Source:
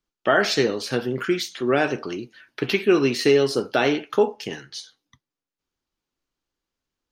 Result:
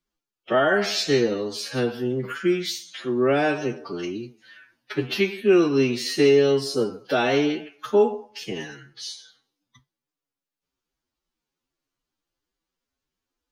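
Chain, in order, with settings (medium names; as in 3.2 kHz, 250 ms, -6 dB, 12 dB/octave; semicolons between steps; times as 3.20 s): dynamic bell 1.6 kHz, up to -3 dB, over -33 dBFS, Q 0.73; time stretch by phase-locked vocoder 1.9×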